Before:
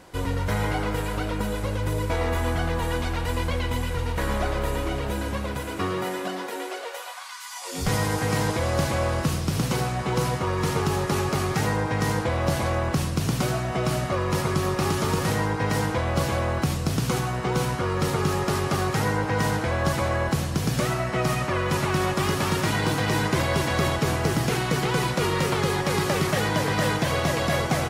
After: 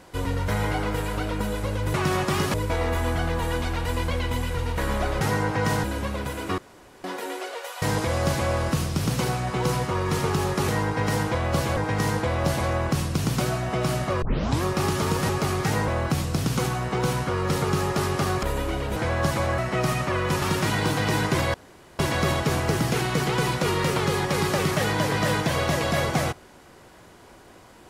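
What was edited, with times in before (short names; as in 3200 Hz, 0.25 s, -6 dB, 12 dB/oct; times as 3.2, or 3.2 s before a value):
4.61–5.14 swap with 18.95–19.58
5.88–6.34 room tone
7.12–8.34 cut
11.2–11.79 swap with 15.31–16.4
14.24 tape start 0.41 s
20.2–20.99 cut
21.83–22.43 move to 1.94
23.55 insert room tone 0.45 s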